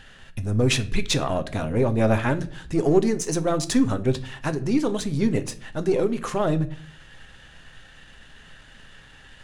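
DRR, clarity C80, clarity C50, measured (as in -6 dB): 9.5 dB, 22.0 dB, 17.5 dB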